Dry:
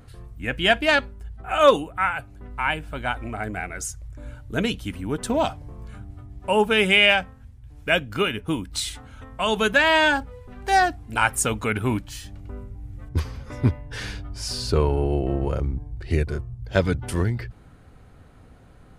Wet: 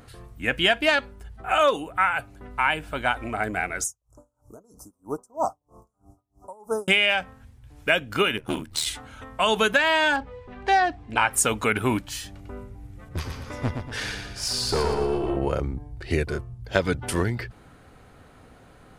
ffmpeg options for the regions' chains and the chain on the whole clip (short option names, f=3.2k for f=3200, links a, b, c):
-filter_complex "[0:a]asettb=1/sr,asplit=3[a][b][c];[a]atrim=end=3.844[d];[b]atrim=start=3.84:end=6.88,asetpts=PTS-STARTPTS,afade=t=in:d=0.004:c=qsin,afade=t=out:st=3.036:d=0.004:c=qsin,asuperstop=centerf=2600:order=12:qfactor=0.62,lowshelf=f=330:g=-10,aeval=exprs='val(0)*pow(10,-33*(0.5-0.5*cos(2*PI*3.1*n/s))/20)':c=same[e];[c]atrim=start=6.876[f];[d][e]acrossfade=d=0.004:c1=hsin:c2=qsin[g];[g][f]acrossfade=d=0.004:c1=qsin:c2=hsin,asettb=1/sr,asplit=3[h][i][j];[h]atrim=end=8.374[k];[i]atrim=start=8.37:end=8.87,asetpts=PTS-STARTPTS,afade=t=in:d=0.004:c=qsin,afade=t=out:st=0.496:d=0.004:c=qsin,aeval=exprs='clip(val(0),-1,0.0531)':c=same,aeval=exprs='val(0)*sin(2*PI*39*n/s)':c=same[l];[j]atrim=start=8.866[m];[k][l]acrossfade=d=0.004:c1=hsin:c2=qsin[n];[n][m]acrossfade=d=0.004:c1=qsin:c2=hsin,asettb=1/sr,asplit=3[o][p][q];[o]atrim=end=10.164[r];[p]atrim=start=10.16:end=11.31,asetpts=PTS-STARTPTS,afade=t=in:d=0.004:c=qsin,afade=t=out:st=1.146:d=0.004:c=qsin,lowpass=4k,bandreject=f=1.4k:w=10[s];[q]atrim=start=11.306[t];[r][s]acrossfade=d=0.004:c1=hsin:c2=qsin[u];[u][t]acrossfade=d=0.004:c1=qsin:c2=hsin,asettb=1/sr,asplit=3[v][w][x];[v]atrim=end=12.874[y];[w]atrim=start=12.87:end=15.37,asetpts=PTS-STARTPTS,afade=t=in:d=0.004:c=qsin,afade=t=out:st=2.496:d=0.004:c=qsin,aeval=exprs='(tanh(8.91*val(0)+0.4)-tanh(0.4))/8.91':c=same,aecho=1:1:118|236|354|472|590:0.501|0.21|0.0884|0.0371|0.0156,atrim=end_sample=110250[z];[x]atrim=start=15.366[aa];[y][z]acrossfade=d=0.004:c1=hsin:c2=qsin[ab];[ab][aa]acrossfade=d=0.004:c1=qsin:c2=hsin,lowshelf=f=190:g=-10.5,acompressor=threshold=-21dB:ratio=6,volume=4.5dB"